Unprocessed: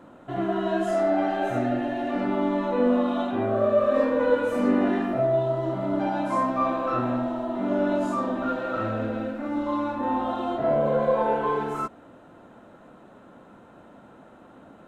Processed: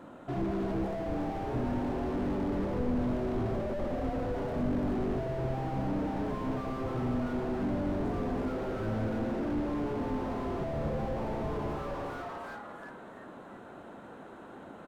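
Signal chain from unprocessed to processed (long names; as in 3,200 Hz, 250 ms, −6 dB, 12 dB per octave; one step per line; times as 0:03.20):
on a send: echo with shifted repeats 345 ms, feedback 37%, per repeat +130 Hz, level −3.5 dB
on the sum: slew-rate limiting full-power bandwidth 11 Hz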